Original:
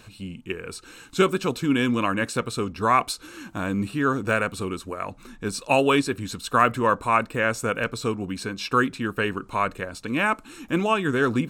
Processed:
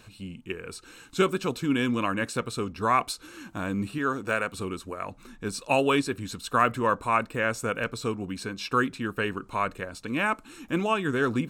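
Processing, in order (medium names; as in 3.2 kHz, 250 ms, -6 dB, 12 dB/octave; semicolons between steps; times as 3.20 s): 3.98–4.54 s: bass shelf 200 Hz -8.5 dB; trim -3.5 dB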